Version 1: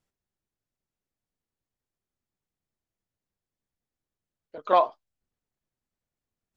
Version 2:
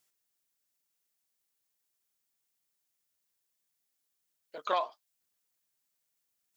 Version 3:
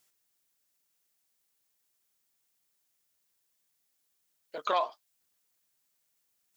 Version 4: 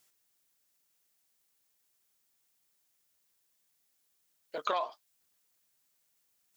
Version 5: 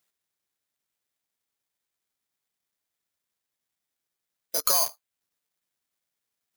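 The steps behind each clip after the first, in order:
high-pass 49 Hz; tilt EQ +4 dB/octave; compression 3:1, threshold -29 dBFS, peak gain reduction 10.5 dB
peak limiter -22 dBFS, peak gain reduction 5 dB; trim +4.5 dB
compression, threshold -29 dBFS, peak gain reduction 6.5 dB; trim +1.5 dB
tracing distortion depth 0.062 ms; in parallel at -6.5 dB: companded quantiser 2-bit; on the sum: careless resampling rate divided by 8×, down filtered, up zero stuff; trim -4.5 dB

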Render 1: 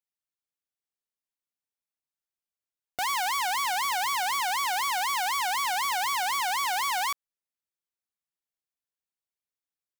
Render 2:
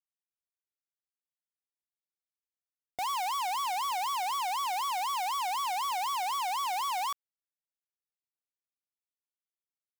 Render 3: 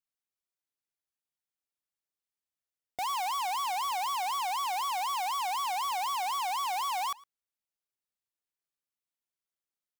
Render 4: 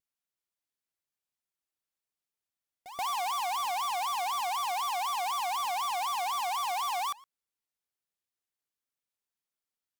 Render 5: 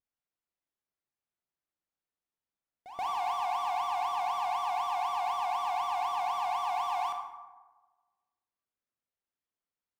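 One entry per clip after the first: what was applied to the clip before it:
waveshaping leveller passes 5; trim -7.5 dB
echo from a far wall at 19 m, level -22 dB
vibrato 4 Hz 97 cents; pre-echo 130 ms -13.5 dB
low-pass 1.5 kHz 6 dB/octave; reverberation RT60 1.3 s, pre-delay 18 ms, DRR 3.5 dB

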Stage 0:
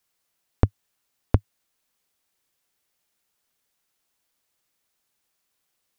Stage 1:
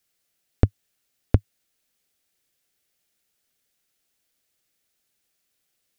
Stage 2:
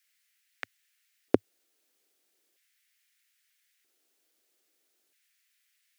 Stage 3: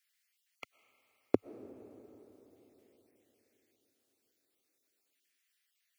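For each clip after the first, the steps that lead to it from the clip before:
peaking EQ 1 kHz -9.5 dB 0.66 oct; trim +1.5 dB
LFO high-pass square 0.39 Hz 350–1900 Hz
random holes in the spectrogram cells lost 23%; algorithmic reverb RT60 4.3 s, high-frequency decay 0.6×, pre-delay 80 ms, DRR 15 dB; trim -5 dB

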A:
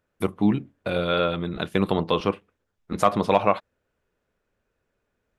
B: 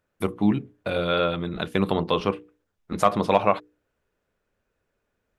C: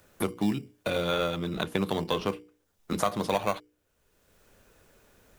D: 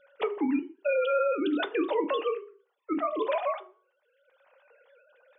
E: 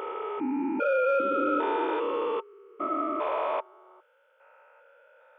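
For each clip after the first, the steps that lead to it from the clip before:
hum notches 60/120/180/240/300/360/420/480 Hz
treble shelf 3.9 kHz +11.5 dB; in parallel at -9.5 dB: sample-and-hold 17×; on the sum: three bands compressed up and down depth 70%; trim -8 dB
formants replaced by sine waves; peak limiter -25 dBFS, peak gain reduction 10.5 dB; on a send at -7.5 dB: reverberation RT60 0.40 s, pre-delay 3 ms; on the sum: trim +4.5 dB
spectrogram pixelated in time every 400 ms; in parallel at -10.5 dB: saturation -31 dBFS, distortion -12 dB; on the sum: small resonant body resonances 900/1300 Hz, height 17 dB, ringing for 65 ms; trim +2 dB

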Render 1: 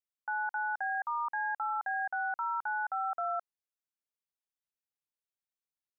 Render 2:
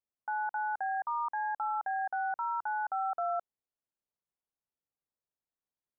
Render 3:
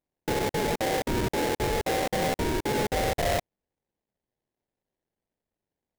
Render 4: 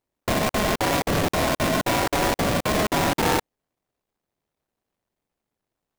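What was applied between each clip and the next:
low-pass 1 kHz 12 dB/octave; trim +4 dB
sample-rate reducer 1.3 kHz, jitter 20%; trim +6.5 dB
polarity switched at an audio rate 210 Hz; trim +4.5 dB

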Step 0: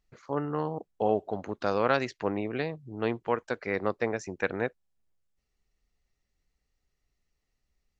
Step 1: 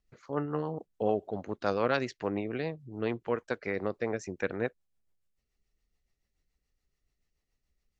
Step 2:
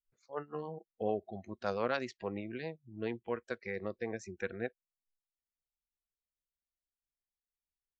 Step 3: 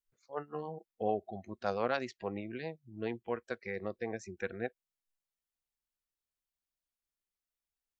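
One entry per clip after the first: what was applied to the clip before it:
rotary cabinet horn 7 Hz
spectral noise reduction 20 dB; trim -5 dB
dynamic bell 750 Hz, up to +5 dB, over -51 dBFS, Q 4.3

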